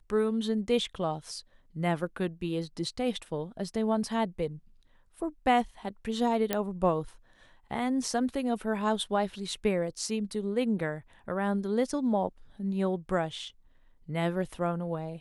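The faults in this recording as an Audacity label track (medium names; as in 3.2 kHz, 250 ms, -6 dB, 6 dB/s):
6.530000	6.530000	pop -12 dBFS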